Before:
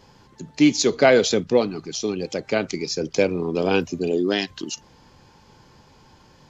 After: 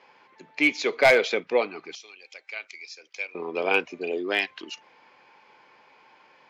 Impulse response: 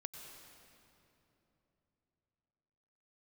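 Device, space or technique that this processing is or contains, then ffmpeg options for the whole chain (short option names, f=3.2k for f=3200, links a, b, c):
megaphone: -filter_complex "[0:a]asettb=1/sr,asplit=3[a][b][c];[a]atrim=end=1.954[d];[b]atrim=start=1.95:end=3.35,asetpts=PTS-STARTPTS,afade=t=in:d=0.004:c=qsin,afade=t=out:st=1.396:d=0.004:c=qsin,aderivative[e];[c]atrim=start=3.346[f];[d][e]acrossfade=d=0.004:c1=hsin:c2=qsin[g];[g][f]acrossfade=d=0.004:c1=qsin:c2=hsin,highpass=560,lowpass=2.7k,equalizer=f=2.3k:t=o:w=0.38:g=10.5,asoftclip=type=hard:threshold=-10.5dB"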